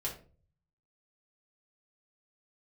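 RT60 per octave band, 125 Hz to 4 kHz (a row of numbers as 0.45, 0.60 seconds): 0.95, 0.55, 0.45, 0.35, 0.30, 0.25 seconds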